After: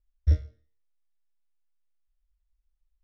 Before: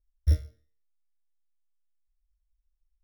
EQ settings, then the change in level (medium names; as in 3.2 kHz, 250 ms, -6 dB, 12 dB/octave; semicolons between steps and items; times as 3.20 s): distance through air 140 m; +1.0 dB